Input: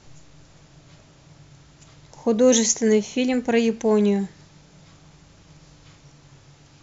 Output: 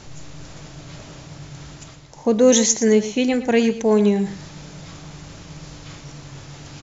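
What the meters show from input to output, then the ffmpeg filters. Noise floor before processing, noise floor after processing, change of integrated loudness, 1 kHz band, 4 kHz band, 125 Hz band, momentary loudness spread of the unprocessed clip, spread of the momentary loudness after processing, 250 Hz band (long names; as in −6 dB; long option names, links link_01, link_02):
−53 dBFS, −43 dBFS, +2.5 dB, +3.0 dB, +3.0 dB, +4.0 dB, 9 LU, 11 LU, +2.5 dB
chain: -af "areverse,acompressor=mode=upward:threshold=-30dB:ratio=2.5,areverse,aecho=1:1:116:0.211,volume=2.5dB"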